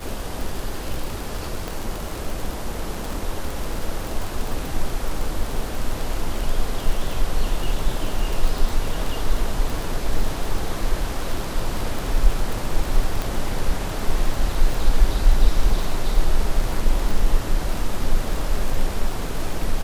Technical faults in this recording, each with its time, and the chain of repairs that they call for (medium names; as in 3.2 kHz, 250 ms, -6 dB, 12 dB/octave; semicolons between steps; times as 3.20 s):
crackle 31 per s -23 dBFS
1.68 s: pop
13.22 s: pop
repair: de-click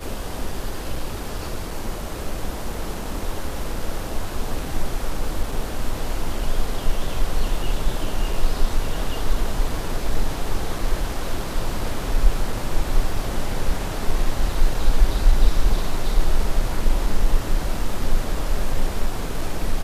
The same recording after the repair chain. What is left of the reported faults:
nothing left